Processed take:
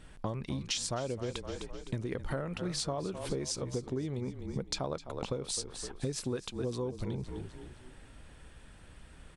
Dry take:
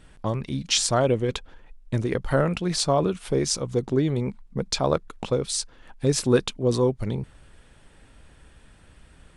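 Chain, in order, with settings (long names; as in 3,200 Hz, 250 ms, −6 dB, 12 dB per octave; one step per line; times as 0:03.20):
on a send: echo with shifted repeats 256 ms, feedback 44%, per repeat −31 Hz, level −14 dB
on the sum: downward compressor 10 to 1, threshold −30 dBFS, peak gain reduction 17 dB
level −1.5 dB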